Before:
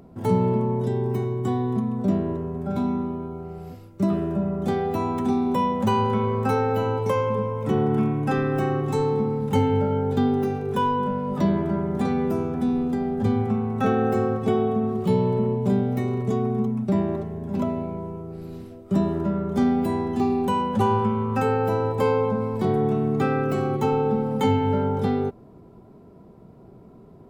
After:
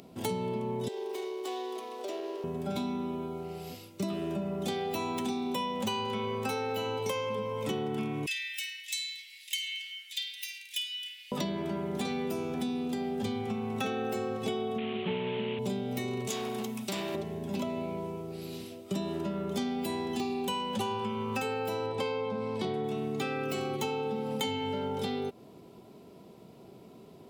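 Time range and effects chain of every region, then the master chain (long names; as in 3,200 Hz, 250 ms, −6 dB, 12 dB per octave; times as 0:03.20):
0:00.88–0:02.44: running median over 15 samples + Butterworth high-pass 340 Hz 48 dB per octave + downward compressor 2 to 1, threshold −34 dBFS
0:08.26–0:11.32: Butterworth high-pass 1,900 Hz 72 dB per octave + flutter between parallel walls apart 9 metres, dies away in 0.25 s
0:14.78–0:15.59: variable-slope delta modulation 16 kbit/s + high-pass filter 120 Hz
0:16.27–0:17.15: spectral tilt +3 dB per octave + hard clipping −26.5 dBFS
0:21.86–0:22.84: high-frequency loss of the air 61 metres + notch filter 7,000 Hz, Q 11
whole clip: high-pass filter 300 Hz 6 dB per octave; high shelf with overshoot 2,100 Hz +10 dB, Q 1.5; downward compressor, threshold −30 dBFS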